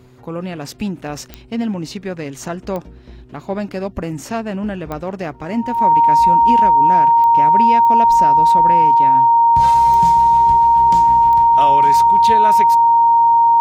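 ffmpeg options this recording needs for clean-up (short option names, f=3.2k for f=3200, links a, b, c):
-af "adeclick=t=4,bandreject=f=125.9:t=h:w=4,bandreject=f=251.8:t=h:w=4,bandreject=f=377.7:t=h:w=4,bandreject=f=930:w=30"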